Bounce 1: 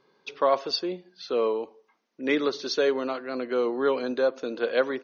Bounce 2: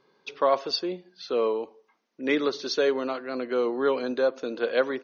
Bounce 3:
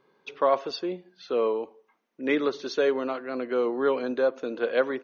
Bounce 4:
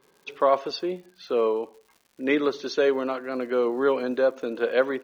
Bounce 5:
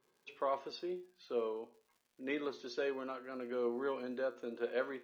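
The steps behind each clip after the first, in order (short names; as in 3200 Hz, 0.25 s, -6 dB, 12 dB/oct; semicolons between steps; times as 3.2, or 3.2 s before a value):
nothing audible
bell 4900 Hz -9 dB 0.79 oct
crackle 210/s -48 dBFS; gain +2 dB
resonator 120 Hz, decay 0.33 s, harmonics all, mix 70%; gain -7 dB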